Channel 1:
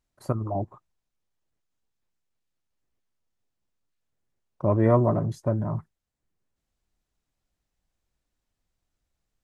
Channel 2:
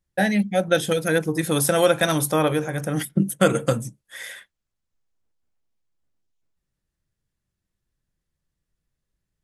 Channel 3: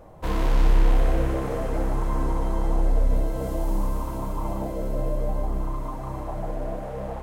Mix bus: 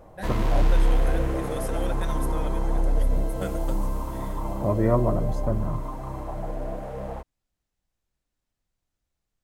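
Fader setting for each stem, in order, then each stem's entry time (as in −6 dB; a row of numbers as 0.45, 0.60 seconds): −2.0, −17.5, −1.5 decibels; 0.00, 0.00, 0.00 seconds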